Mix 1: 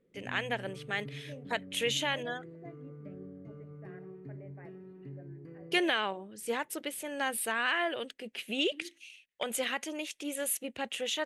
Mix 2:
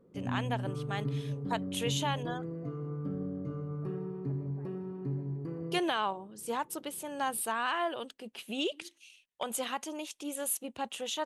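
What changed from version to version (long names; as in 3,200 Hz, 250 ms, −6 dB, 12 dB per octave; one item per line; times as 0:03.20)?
second voice −6.0 dB
background +11.0 dB
master: add graphic EQ with 10 bands 500 Hz −4 dB, 1,000 Hz +8 dB, 2,000 Hz −11 dB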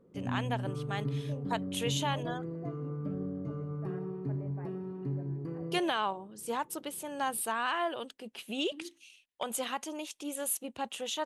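second voice +10.0 dB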